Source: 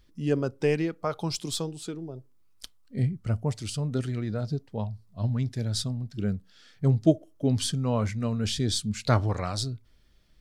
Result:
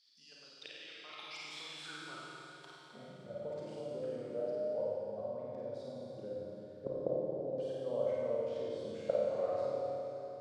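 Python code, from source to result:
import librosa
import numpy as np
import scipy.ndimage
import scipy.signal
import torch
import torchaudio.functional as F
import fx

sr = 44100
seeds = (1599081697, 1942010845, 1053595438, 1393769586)

p1 = fx.low_shelf(x, sr, hz=410.0, db=-4.0)
p2 = fx.level_steps(p1, sr, step_db=23)
p3 = fx.gate_flip(p2, sr, shuts_db=-24.0, range_db=-26)
p4 = fx.filter_sweep_bandpass(p3, sr, from_hz=4700.0, to_hz=540.0, start_s=0.3, end_s=3.36, q=6.9)
p5 = p4 + fx.room_flutter(p4, sr, wall_m=9.0, rt60_s=0.65, dry=0)
p6 = fx.rev_schroeder(p5, sr, rt60_s=3.6, comb_ms=29, drr_db=-5.0)
y = F.gain(torch.from_numpy(p6), 15.5).numpy()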